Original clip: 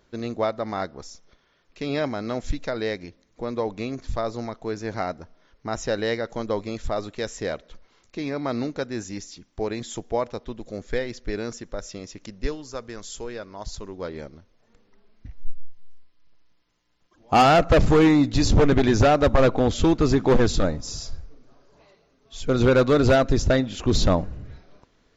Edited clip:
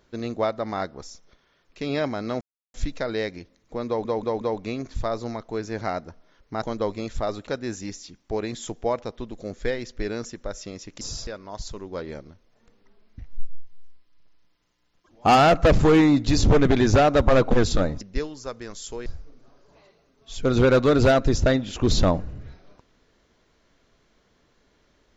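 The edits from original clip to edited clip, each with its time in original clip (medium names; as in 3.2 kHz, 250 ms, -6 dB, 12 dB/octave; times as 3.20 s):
2.41 s: insert silence 0.33 s
3.54 s: stutter 0.18 s, 4 plays
5.75–6.31 s: delete
7.16–8.75 s: delete
12.29–13.34 s: swap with 20.84–21.10 s
19.58–20.34 s: delete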